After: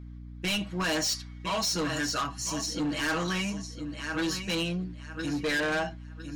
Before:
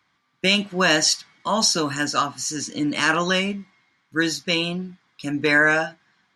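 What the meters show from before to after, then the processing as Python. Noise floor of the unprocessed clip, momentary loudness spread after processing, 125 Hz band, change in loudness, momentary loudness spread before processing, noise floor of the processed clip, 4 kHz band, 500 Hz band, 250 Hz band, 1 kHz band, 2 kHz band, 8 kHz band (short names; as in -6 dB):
-68 dBFS, 9 LU, -4.5 dB, -9.0 dB, 12 LU, -43 dBFS, -8.5 dB, -8.5 dB, -6.0 dB, -8.5 dB, -11.0 dB, -8.0 dB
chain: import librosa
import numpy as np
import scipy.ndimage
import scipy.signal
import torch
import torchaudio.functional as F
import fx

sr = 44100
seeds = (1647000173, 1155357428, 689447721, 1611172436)

p1 = x + 0.93 * np.pad(x, (int(6.3 * sr / 1000.0), 0))[:len(x)]
p2 = p1 + fx.echo_feedback(p1, sr, ms=1006, feedback_pct=22, wet_db=-11.0, dry=0)
p3 = fx.add_hum(p2, sr, base_hz=60, snr_db=16)
p4 = 10.0 ** (-18.0 / 20.0) * np.tanh(p3 / 10.0 ** (-18.0 / 20.0))
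y = F.gain(torch.from_numpy(p4), -7.0).numpy()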